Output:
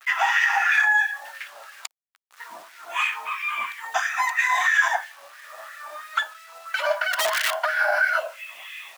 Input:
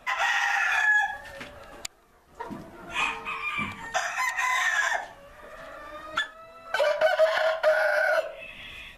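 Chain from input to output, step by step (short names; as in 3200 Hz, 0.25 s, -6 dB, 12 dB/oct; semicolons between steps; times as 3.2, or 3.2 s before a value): bit-crush 8-bit; 7.13–7.64 wrapped overs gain 19 dB; LFO high-pass sine 3 Hz 730–1900 Hz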